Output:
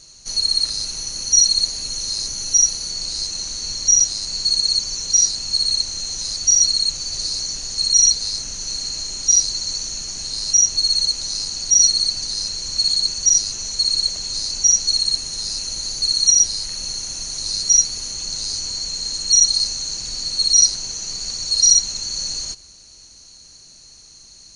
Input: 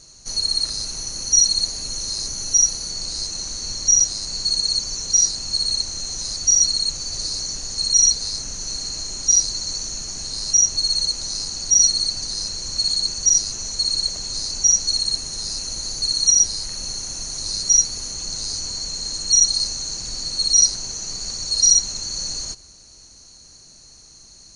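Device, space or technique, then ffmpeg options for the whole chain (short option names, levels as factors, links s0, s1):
presence and air boost: -af "equalizer=f=3100:t=o:w=1.4:g=6,highshelf=f=9400:g=4.5,volume=0.794"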